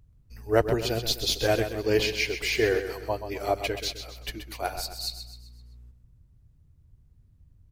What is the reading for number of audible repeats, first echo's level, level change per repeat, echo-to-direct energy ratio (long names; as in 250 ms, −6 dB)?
4, −9.5 dB, −7.0 dB, −8.5 dB